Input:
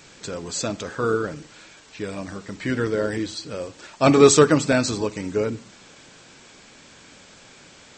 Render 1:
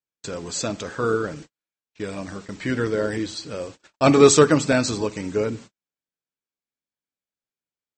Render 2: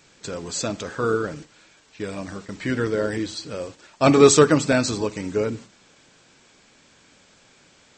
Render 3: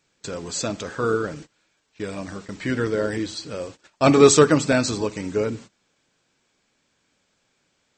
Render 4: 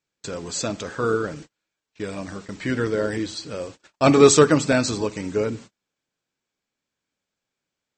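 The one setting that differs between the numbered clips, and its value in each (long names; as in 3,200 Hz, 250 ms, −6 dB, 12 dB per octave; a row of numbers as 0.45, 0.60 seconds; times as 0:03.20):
noise gate, range: −50, −7, −21, −36 decibels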